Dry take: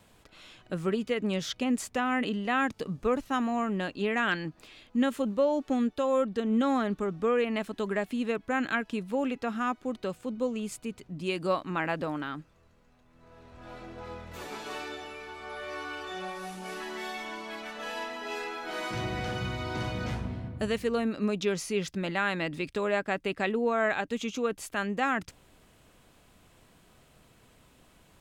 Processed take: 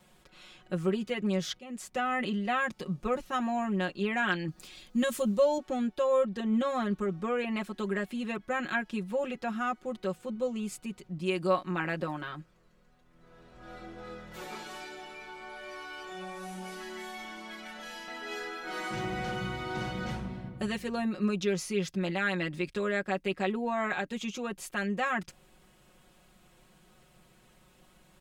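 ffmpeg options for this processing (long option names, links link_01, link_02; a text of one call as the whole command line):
ffmpeg -i in.wav -filter_complex "[0:a]asettb=1/sr,asplit=3[link_01][link_02][link_03];[link_01]atrim=end=4.484[link_04];[link_02]atrim=start=4.48:end=5.58,asetpts=PTS-STARTPTS,afade=type=in:duration=0.004:curve=qsin,afade=type=out:start_time=1.096:duration=0.004:curve=qsin,bass=frequency=250:gain=5,treble=frequency=4000:gain=11[link_05];[link_03]atrim=start=5.576[link_06];[link_04][link_05]acrossfade=duration=0.004:curve1=hsin:curve2=qsin[link_07];[link_07][link_06]acrossfade=duration=0.004:curve1=qsin:curve2=hsin,asettb=1/sr,asplit=3[link_08][link_09][link_10];[link_08]atrim=end=14.634[link_11];[link_09]atrim=start=14.63:end=18.08,asetpts=PTS-STARTPTS,afade=type=in:duration=0.004:curve=qsin,afade=type=out:start_time=3.446:duration=0.004:curve=qsin,acrossover=split=220|3000[link_12][link_13][link_14];[link_13]acompressor=threshold=-40dB:ratio=6:attack=3.2:release=140:knee=2.83:detection=peak[link_15];[link_12][link_15][link_14]amix=inputs=3:normalize=0[link_16];[link_10]atrim=start=18.076[link_17];[link_11][link_16]acrossfade=duration=0.004:curve1=hsin:curve2=qsin[link_18];[link_18][link_17]acrossfade=duration=0.004:curve1=qsin:curve2=hsin,asplit=2[link_19][link_20];[link_19]atrim=end=1.59,asetpts=PTS-STARTPTS,afade=type=out:start_time=1.586:duration=0.004:curve=hsin:silence=0.125893[link_21];[link_20]atrim=start=1.59,asetpts=PTS-STARTPTS,afade=type=in:duration=0.45:silence=0.125893[link_22];[link_21][link_22]concat=n=2:v=0:a=1,aecho=1:1:5.5:0.93,volume=-4dB" out.wav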